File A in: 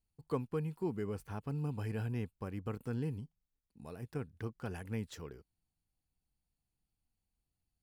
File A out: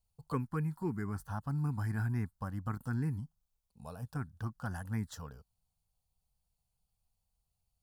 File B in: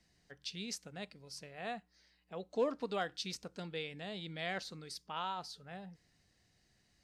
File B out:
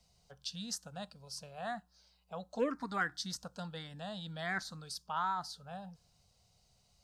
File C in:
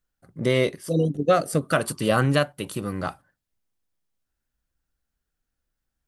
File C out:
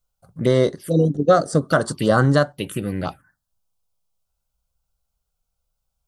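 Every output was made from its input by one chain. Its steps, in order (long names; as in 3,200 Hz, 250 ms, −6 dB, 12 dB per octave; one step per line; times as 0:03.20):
parametric band 1,600 Hz +4 dB 0.72 octaves
phaser swept by the level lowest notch 300 Hz, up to 2,500 Hz, full sweep at −21 dBFS
level +5 dB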